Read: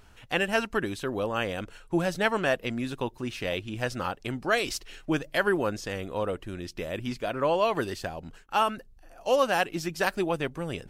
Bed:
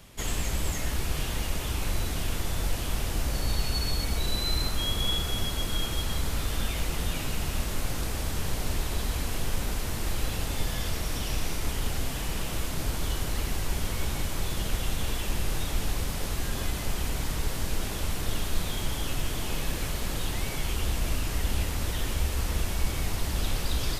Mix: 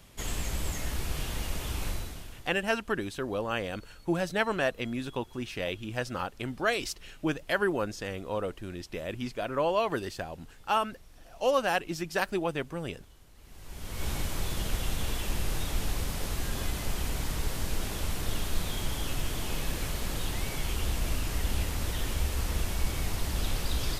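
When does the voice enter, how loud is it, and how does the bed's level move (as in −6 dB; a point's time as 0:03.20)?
2.15 s, −2.5 dB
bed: 0:01.88 −3.5 dB
0:02.68 −27 dB
0:13.35 −27 dB
0:14.08 −2 dB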